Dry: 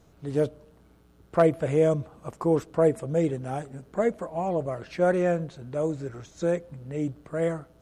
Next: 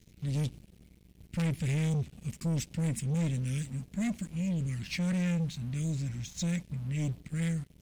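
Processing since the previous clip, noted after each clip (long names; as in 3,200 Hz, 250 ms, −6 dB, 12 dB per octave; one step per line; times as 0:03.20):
dynamic equaliser 5,900 Hz, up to +5 dB, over −53 dBFS, Q 0.8
Chebyshev band-stop filter 220–2,200 Hz, order 3
leveller curve on the samples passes 3
level −4.5 dB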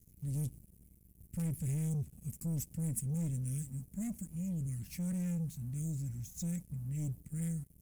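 drawn EQ curve 100 Hz 0 dB, 3,800 Hz −18 dB, 11,000 Hz +11 dB
level −3 dB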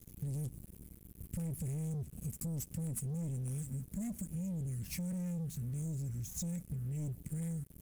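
leveller curve on the samples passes 2
downward compressor 6 to 1, threshold −39 dBFS, peak gain reduction 9.5 dB
level +1.5 dB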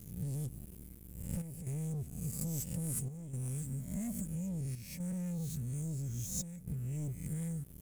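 peak hold with a rise ahead of every peak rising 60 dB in 0.67 s
square-wave tremolo 0.6 Hz, depth 60%, duty 85%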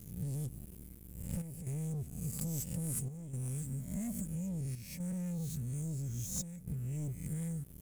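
wavefolder on the positive side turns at −28.5 dBFS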